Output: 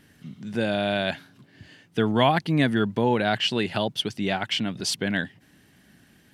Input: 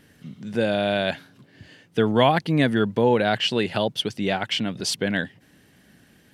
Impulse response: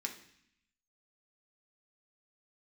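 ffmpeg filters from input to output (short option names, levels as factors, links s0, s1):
-af "equalizer=f=500:w=3.4:g=-5.5,volume=0.891"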